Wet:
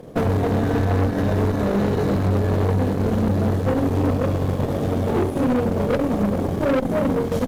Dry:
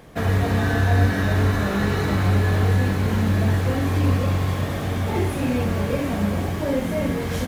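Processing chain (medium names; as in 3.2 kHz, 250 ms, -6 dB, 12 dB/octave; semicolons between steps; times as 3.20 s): graphic EQ 125/250/500/2000 Hz +5/+7/+11/-5 dB; transient shaper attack +5 dB, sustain -11 dB; valve stage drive 16 dB, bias 0.5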